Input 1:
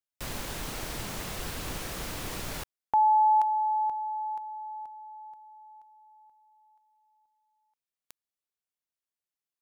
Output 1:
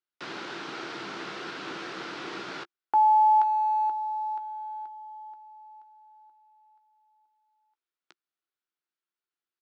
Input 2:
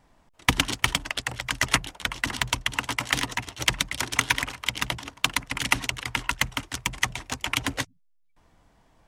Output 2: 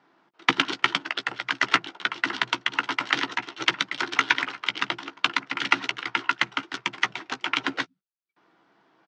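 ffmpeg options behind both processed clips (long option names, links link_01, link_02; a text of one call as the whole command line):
ffmpeg -i in.wav -filter_complex "[0:a]acrusher=bits=8:mode=log:mix=0:aa=0.000001,highpass=frequency=190:width=0.5412,highpass=frequency=190:width=1.3066,equalizer=frequency=230:width_type=q:width=4:gain=-7,equalizer=frequency=350:width_type=q:width=4:gain=8,equalizer=frequency=570:width_type=q:width=4:gain=-5,equalizer=frequency=1400:width_type=q:width=4:gain=8,lowpass=frequency=4800:width=0.5412,lowpass=frequency=4800:width=1.3066,asplit=2[link_01][link_02];[link_02]adelay=15,volume=-11dB[link_03];[link_01][link_03]amix=inputs=2:normalize=0" out.wav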